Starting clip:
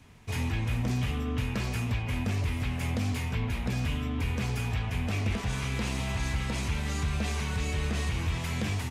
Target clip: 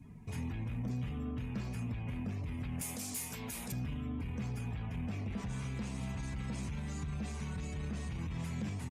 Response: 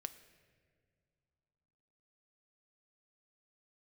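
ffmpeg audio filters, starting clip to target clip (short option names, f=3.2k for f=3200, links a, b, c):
-filter_complex "[0:a]asettb=1/sr,asplit=3[a][b][c];[a]atrim=end=2.814[d];[b]atrim=start=2.81:end=3.72,asetpts=PTS-STARTPTS,afade=t=in:d=0.004:c=qsin,afade=t=out:st=0.906:d=0.004:c=qsin,bass=f=250:g=-13,treble=f=4k:g=15[e];[c]atrim=start=3.716[f];[d][e]acrossfade=d=0.004:c1=hsin:c2=qsin[g];[g][f]acrossfade=d=0.004:c1=qsin:c2=hsin,asoftclip=type=tanh:threshold=-24dB,alimiter=level_in=10.5dB:limit=-24dB:level=0:latency=1:release=243,volume=-10.5dB,afftdn=nr=16:nf=-57,firequalizer=gain_entry='entry(100,0);entry(160,8);entry(360,0);entry(3000,-5);entry(9000,6)':delay=0.05:min_phase=1"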